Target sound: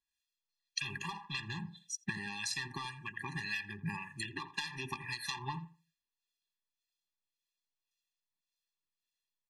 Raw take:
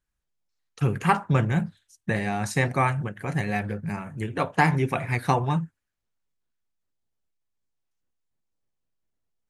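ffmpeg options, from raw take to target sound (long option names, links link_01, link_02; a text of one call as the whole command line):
ffmpeg -i in.wav -filter_complex "[0:a]asoftclip=type=hard:threshold=-20.5dB,tiltshelf=frequency=730:gain=-10,afftdn=noise_reduction=15:noise_floor=-44,acrossover=split=1400|4600[link_01][link_02][link_03];[link_01]acompressor=threshold=-26dB:ratio=4[link_04];[link_02]acompressor=threshold=-33dB:ratio=4[link_05];[link_03]acompressor=threshold=-37dB:ratio=4[link_06];[link_04][link_05][link_06]amix=inputs=3:normalize=0,equalizer=frequency=3700:width_type=o:width=1.4:gain=12,acompressor=threshold=-36dB:ratio=16,asplit=2[link_07][link_08];[link_08]adelay=84,lowpass=frequency=1100:poles=1,volume=-12dB,asplit=2[link_09][link_10];[link_10]adelay=84,lowpass=frequency=1100:poles=1,volume=0.34,asplit=2[link_11][link_12];[link_12]adelay=84,lowpass=frequency=1100:poles=1,volume=0.34[link_13];[link_07][link_09][link_11][link_13]amix=inputs=4:normalize=0,acrossover=split=1300[link_14][link_15];[link_14]aeval=exprs='val(0)*(1-0.7/2+0.7/2*cos(2*PI*1.8*n/s))':channel_layout=same[link_16];[link_15]aeval=exprs='val(0)*(1-0.7/2-0.7/2*cos(2*PI*1.8*n/s))':channel_layout=same[link_17];[link_16][link_17]amix=inputs=2:normalize=0,afftfilt=real='re*eq(mod(floor(b*sr/1024/400),2),0)':imag='im*eq(mod(floor(b*sr/1024/400),2),0)':win_size=1024:overlap=0.75,volume=6dB" out.wav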